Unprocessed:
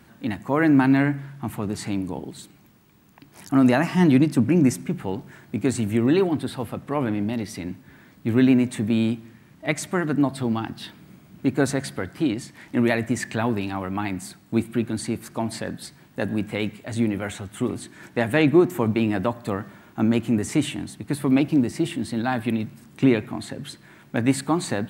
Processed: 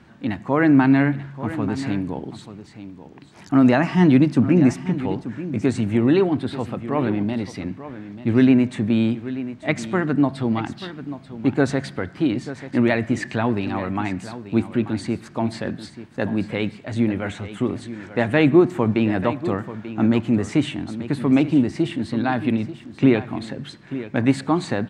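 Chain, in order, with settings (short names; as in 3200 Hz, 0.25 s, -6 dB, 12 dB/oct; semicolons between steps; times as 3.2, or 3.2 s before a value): air absorption 100 m; on a send: echo 0.887 s -13.5 dB; on the sum: gain +2.5 dB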